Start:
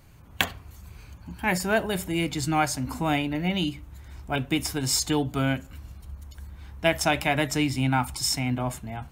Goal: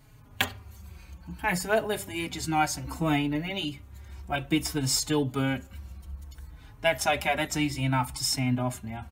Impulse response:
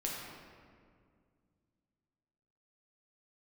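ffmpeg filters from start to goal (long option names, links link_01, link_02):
-filter_complex "[0:a]asplit=2[link_01][link_02];[link_02]adelay=4.2,afreqshift=-0.61[link_03];[link_01][link_03]amix=inputs=2:normalize=1,volume=1dB"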